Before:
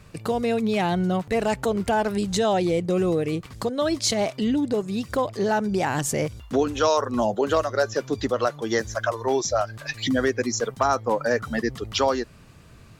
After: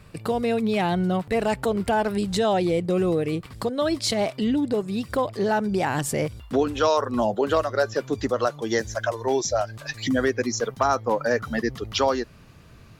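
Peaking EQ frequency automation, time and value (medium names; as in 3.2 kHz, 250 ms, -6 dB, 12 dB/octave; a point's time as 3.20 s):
peaking EQ -7.5 dB 0.32 oct
8.00 s 6.4 kHz
8.71 s 1.2 kHz
9.67 s 1.2 kHz
10.35 s 8.1 kHz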